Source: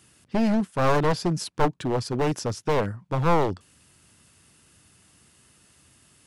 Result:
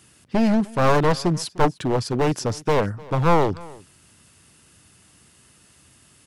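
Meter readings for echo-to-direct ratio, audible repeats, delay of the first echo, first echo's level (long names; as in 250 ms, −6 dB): −22.0 dB, 1, 302 ms, −22.0 dB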